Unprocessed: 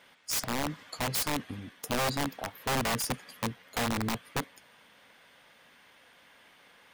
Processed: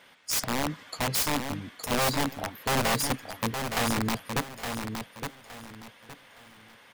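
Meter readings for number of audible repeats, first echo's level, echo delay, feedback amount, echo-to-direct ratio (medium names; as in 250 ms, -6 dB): 3, -6.5 dB, 866 ms, 28%, -6.0 dB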